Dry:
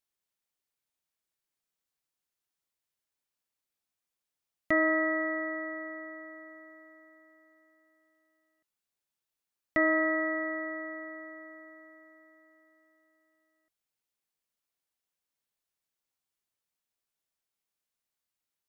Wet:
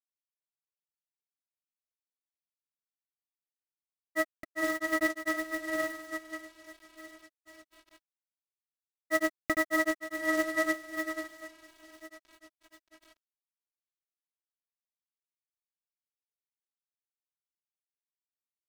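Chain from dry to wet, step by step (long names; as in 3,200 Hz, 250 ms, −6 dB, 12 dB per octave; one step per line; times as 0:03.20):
phase shifter 1.2 Hz, delay 4.4 ms, feedback 31%
log-companded quantiser 4 bits
granular cloud, spray 787 ms, pitch spread up and down by 0 semitones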